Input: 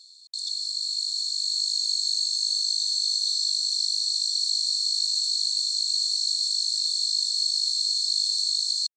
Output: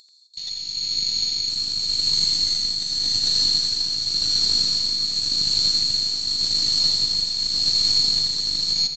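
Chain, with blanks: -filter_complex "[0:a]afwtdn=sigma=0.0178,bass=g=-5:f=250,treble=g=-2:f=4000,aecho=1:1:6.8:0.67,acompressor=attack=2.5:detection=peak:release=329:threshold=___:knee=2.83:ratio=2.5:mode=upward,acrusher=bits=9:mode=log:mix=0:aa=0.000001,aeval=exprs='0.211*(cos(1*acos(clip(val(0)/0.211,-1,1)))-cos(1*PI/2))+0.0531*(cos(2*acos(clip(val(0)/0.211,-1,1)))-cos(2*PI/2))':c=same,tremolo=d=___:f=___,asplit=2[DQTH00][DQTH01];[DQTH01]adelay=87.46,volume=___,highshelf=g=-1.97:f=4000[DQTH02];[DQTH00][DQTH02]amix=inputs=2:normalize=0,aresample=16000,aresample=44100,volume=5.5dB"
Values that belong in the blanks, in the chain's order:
-49dB, 0.46, 0.89, -7dB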